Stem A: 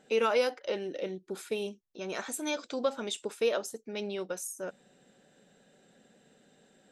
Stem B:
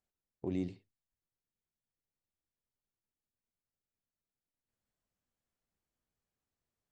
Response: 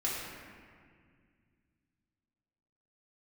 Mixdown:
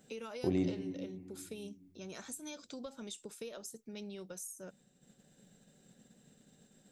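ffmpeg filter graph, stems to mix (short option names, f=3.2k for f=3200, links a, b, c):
-filter_complex "[0:a]bass=f=250:g=14,treble=f=4k:g=11,acrossover=split=120[a][b];[b]acompressor=threshold=-30dB:ratio=6[c];[a][c]amix=inputs=2:normalize=0,volume=-12dB[d];[1:a]volume=2.5dB,asplit=2[e][f];[f]volume=-11dB[g];[2:a]atrim=start_sample=2205[h];[g][h]afir=irnorm=-1:irlink=0[i];[d][e][i]amix=inputs=3:normalize=0,agate=range=-33dB:threshold=-60dB:ratio=3:detection=peak,acompressor=mode=upward:threshold=-50dB:ratio=2.5"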